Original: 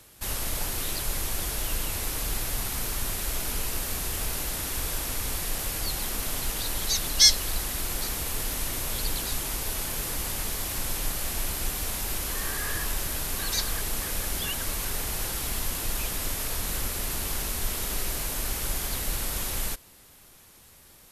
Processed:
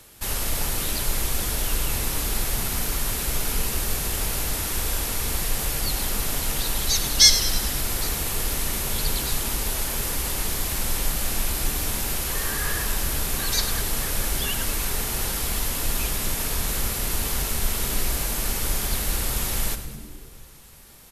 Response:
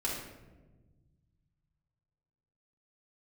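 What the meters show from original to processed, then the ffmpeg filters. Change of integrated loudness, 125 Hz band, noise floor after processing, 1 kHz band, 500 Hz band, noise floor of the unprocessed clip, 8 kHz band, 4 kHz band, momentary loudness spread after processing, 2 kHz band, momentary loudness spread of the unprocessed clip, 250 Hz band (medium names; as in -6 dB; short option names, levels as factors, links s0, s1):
+4.0 dB, +5.5 dB, -42 dBFS, +4.0 dB, +4.5 dB, -53 dBFS, +4.0 dB, +3.5 dB, 2 LU, +4.0 dB, 2 LU, +5.5 dB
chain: -filter_complex "[0:a]asplit=8[s0][s1][s2][s3][s4][s5][s6][s7];[s1]adelay=102,afreqshift=-79,volume=0.237[s8];[s2]adelay=204,afreqshift=-158,volume=0.143[s9];[s3]adelay=306,afreqshift=-237,volume=0.0851[s10];[s4]adelay=408,afreqshift=-316,volume=0.0513[s11];[s5]adelay=510,afreqshift=-395,volume=0.0309[s12];[s6]adelay=612,afreqshift=-474,volume=0.0184[s13];[s7]adelay=714,afreqshift=-553,volume=0.0111[s14];[s0][s8][s9][s10][s11][s12][s13][s14]amix=inputs=8:normalize=0,asplit=2[s15][s16];[1:a]atrim=start_sample=2205[s17];[s16][s17]afir=irnorm=-1:irlink=0,volume=0.188[s18];[s15][s18]amix=inputs=2:normalize=0,volume=1.33"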